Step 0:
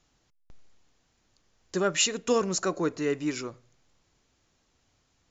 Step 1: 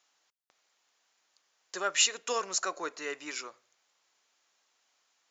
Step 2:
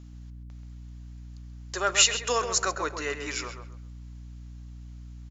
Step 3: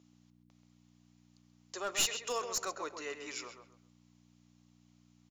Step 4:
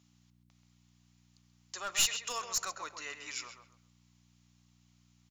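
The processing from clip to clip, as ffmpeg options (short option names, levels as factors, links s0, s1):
-af "highpass=790"
-filter_complex "[0:a]aeval=exprs='val(0)+0.00355*(sin(2*PI*60*n/s)+sin(2*PI*2*60*n/s)/2+sin(2*PI*3*60*n/s)/3+sin(2*PI*4*60*n/s)/4+sin(2*PI*5*60*n/s)/5)':c=same,asplit=2[s0][s1];[s1]adelay=132,lowpass=f=2500:p=1,volume=0.447,asplit=2[s2][s3];[s3]adelay=132,lowpass=f=2500:p=1,volume=0.27,asplit=2[s4][s5];[s5]adelay=132,lowpass=f=2500:p=1,volume=0.27[s6];[s0][s2][s4][s6]amix=inputs=4:normalize=0,volume=1.78"
-af "highpass=240,equalizer=f=1600:w=2.9:g=-6.5,aeval=exprs='clip(val(0),-1,0.0794)':c=same,volume=0.376"
-af "equalizer=f=390:w=0.84:g=-14.5,volume=1.41"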